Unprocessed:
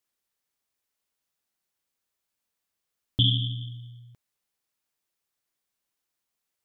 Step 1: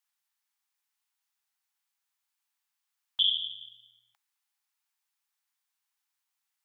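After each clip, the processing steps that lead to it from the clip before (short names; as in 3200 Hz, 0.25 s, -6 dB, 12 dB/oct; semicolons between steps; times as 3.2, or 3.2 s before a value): elliptic high-pass 800 Hz, stop band 40 dB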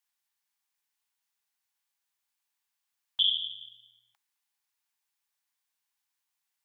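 notch 1300 Hz, Q 14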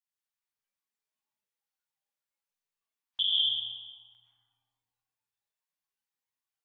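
digital reverb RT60 2.4 s, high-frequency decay 0.4×, pre-delay 75 ms, DRR -5.5 dB; spectral noise reduction 10 dB; gain -4 dB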